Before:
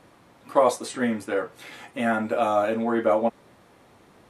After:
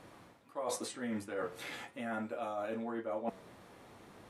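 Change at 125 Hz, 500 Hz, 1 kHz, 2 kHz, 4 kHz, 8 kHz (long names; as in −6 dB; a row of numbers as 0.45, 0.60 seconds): −11.0, −16.0, −16.5, −13.0, −8.5, −6.5 decibels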